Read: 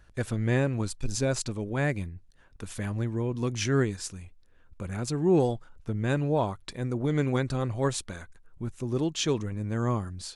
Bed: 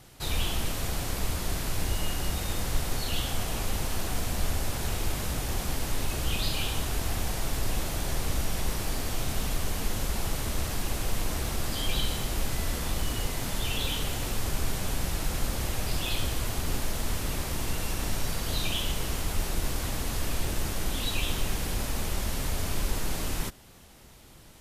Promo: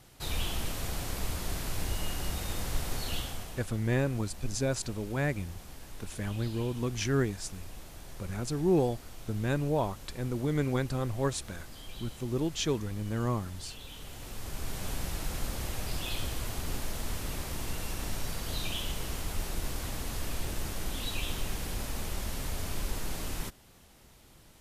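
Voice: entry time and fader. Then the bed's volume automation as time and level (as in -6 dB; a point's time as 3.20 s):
3.40 s, -3.0 dB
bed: 3.14 s -4 dB
3.72 s -16.5 dB
13.85 s -16.5 dB
14.87 s -5 dB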